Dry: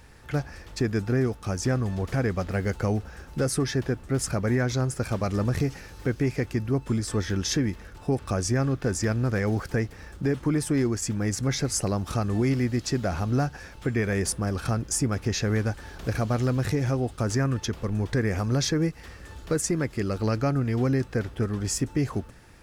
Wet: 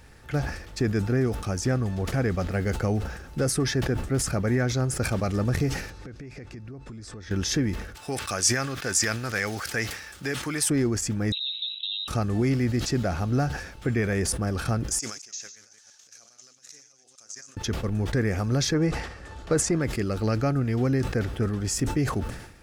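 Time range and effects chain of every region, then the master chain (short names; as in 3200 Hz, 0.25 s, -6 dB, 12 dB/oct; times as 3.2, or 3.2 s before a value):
5.9–7.31 LPF 6700 Hz + notch 3100 Hz, Q 13 + compressor 16:1, threshold -37 dBFS
7.95–10.7 HPF 59 Hz + tilt shelf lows -10 dB, about 830 Hz
11.32–12.08 inverted band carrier 3900 Hz + compressor, threshold -26 dBFS + rippled Chebyshev high-pass 2600 Hz, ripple 6 dB
14.99–17.57 reverse delay 0.114 s, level -6 dB + negative-ratio compressor -30 dBFS + band-pass 6400 Hz, Q 4.7
18.74–19.81 LPF 8400 Hz + bell 820 Hz +6 dB 1.4 oct
whole clip: notch 1000 Hz, Q 10; sustainer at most 72 dB/s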